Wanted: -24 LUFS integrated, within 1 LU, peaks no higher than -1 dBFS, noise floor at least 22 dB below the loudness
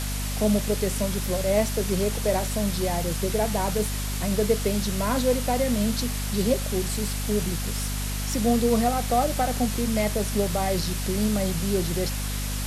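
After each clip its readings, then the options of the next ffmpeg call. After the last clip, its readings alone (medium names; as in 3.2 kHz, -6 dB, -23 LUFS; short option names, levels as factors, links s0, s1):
hum 50 Hz; highest harmonic 250 Hz; hum level -27 dBFS; noise floor -29 dBFS; noise floor target -47 dBFS; loudness -25.0 LUFS; peak level -10.5 dBFS; loudness target -24.0 LUFS
-> -af "bandreject=f=50:t=h:w=4,bandreject=f=100:t=h:w=4,bandreject=f=150:t=h:w=4,bandreject=f=200:t=h:w=4,bandreject=f=250:t=h:w=4"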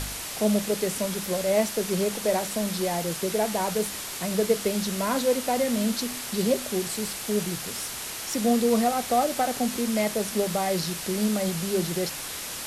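hum not found; noise floor -35 dBFS; noise floor target -48 dBFS
-> -af "afftdn=nr=13:nf=-35"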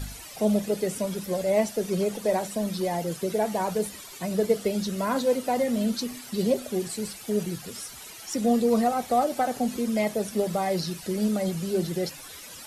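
noise floor -43 dBFS; noise floor target -49 dBFS
-> -af "afftdn=nr=6:nf=-43"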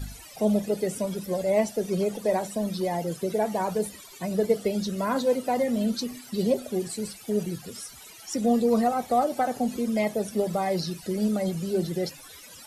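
noise floor -47 dBFS; noise floor target -49 dBFS
-> -af "afftdn=nr=6:nf=-47"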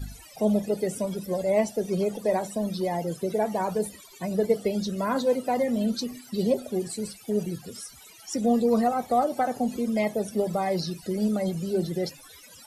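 noise floor -50 dBFS; loudness -27.0 LUFS; peak level -11.5 dBFS; loudness target -24.0 LUFS
-> -af "volume=1.41"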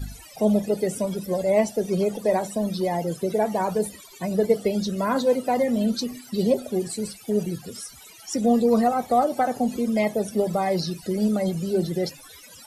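loudness -24.0 LUFS; peak level -8.5 dBFS; noise floor -47 dBFS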